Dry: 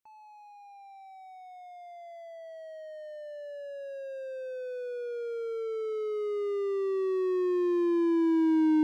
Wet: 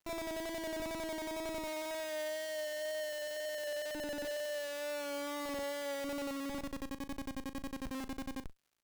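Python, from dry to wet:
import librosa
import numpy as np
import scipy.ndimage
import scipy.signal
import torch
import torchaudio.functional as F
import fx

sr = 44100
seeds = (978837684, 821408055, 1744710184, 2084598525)

y = fx.vocoder_glide(x, sr, note=64, semitones=-4)
y = scipy.signal.sosfilt(scipy.signal.butter(4, 1500.0, 'lowpass', fs=sr, output='sos'), y)
y = fx.low_shelf(y, sr, hz=260.0, db=-5.5)
y = fx.hum_notches(y, sr, base_hz=50, count=10)
y = fx.over_compress(y, sr, threshold_db=-41.0, ratio=-0.5)
y = fx.chopper(y, sr, hz=11.0, depth_pct=60, duty_pct=40)
y = fx.wow_flutter(y, sr, seeds[0], rate_hz=2.1, depth_cents=22.0)
y = fx.schmitt(y, sr, flips_db=-53.0)
y = fx.dmg_crackle(y, sr, seeds[1], per_s=220.0, level_db=-67.0)
y = fx.doubler(y, sr, ms=39.0, db=-13.5)
y = y * 10.0 ** (5.0 / 20.0)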